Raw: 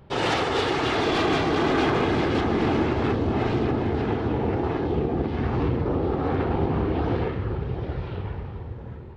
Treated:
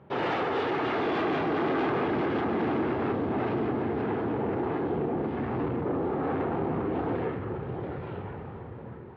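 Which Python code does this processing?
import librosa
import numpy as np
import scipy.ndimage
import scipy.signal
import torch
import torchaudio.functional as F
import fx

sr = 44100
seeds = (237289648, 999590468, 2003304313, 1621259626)

y = 10.0 ** (-22.5 / 20.0) * np.tanh(x / 10.0 ** (-22.5 / 20.0))
y = fx.bandpass_edges(y, sr, low_hz=150.0, high_hz=2100.0)
y = fx.echo_thinned(y, sr, ms=714, feedback_pct=67, hz=420.0, wet_db=-18.0)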